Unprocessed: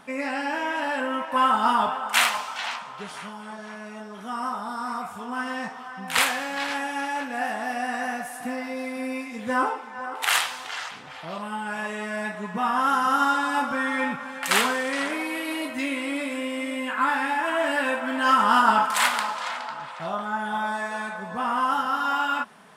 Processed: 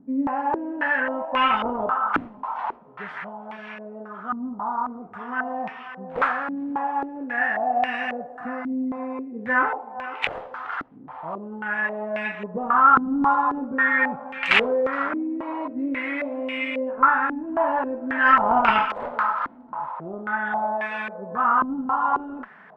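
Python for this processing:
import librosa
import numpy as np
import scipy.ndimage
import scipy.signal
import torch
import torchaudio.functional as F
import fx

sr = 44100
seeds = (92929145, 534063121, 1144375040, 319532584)

y = fx.cheby_harmonics(x, sr, harmonics=(2,), levels_db=(-13,), full_scale_db=-4.5)
y = fx.filter_held_lowpass(y, sr, hz=3.7, low_hz=280.0, high_hz=2500.0)
y = y * librosa.db_to_amplitude(-2.0)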